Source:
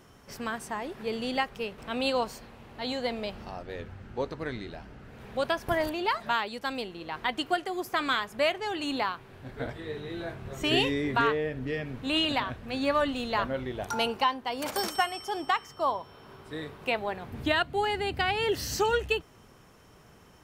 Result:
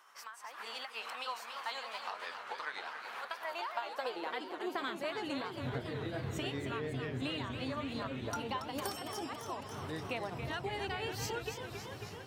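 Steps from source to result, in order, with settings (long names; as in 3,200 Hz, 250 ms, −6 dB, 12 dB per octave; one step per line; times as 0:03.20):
high-pass filter sweep 1,100 Hz → 100 Hz, 0:05.60–0:09.16
downward compressor 6 to 1, threshold −42 dBFS, peak gain reduction 22.5 dB
time stretch by overlap-add 0.6×, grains 199 ms
automatic gain control gain up to 10.5 dB
feedback echo with a swinging delay time 276 ms, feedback 74%, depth 167 cents, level −8 dB
level −5 dB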